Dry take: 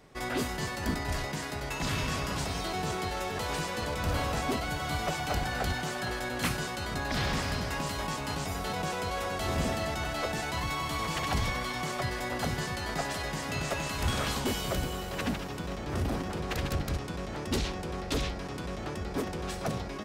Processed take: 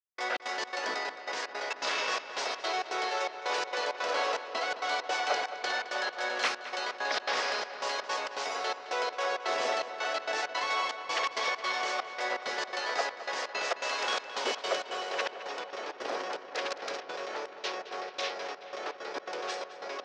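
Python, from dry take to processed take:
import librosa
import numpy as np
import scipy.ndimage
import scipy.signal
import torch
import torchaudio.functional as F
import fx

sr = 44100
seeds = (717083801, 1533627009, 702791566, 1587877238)

p1 = scipy.signal.sosfilt(scipy.signal.cheby1(3, 1.0, [460.0, 5800.0], 'bandpass', fs=sr, output='sos'), x)
p2 = fx.step_gate(p1, sr, bpm=165, pattern='..xx.xx.xxxx', floor_db=-60.0, edge_ms=4.5)
p3 = p2 + fx.echo_filtered(p2, sr, ms=215, feedback_pct=81, hz=4500.0, wet_db=-13, dry=0)
y = F.gain(torch.from_numpy(p3), 4.0).numpy()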